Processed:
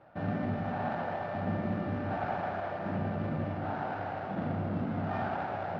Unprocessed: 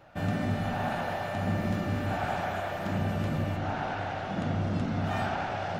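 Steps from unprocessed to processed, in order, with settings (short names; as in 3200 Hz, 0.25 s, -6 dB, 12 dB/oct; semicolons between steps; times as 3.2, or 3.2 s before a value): median filter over 15 samples; HPF 160 Hz 6 dB/oct; air absorption 340 m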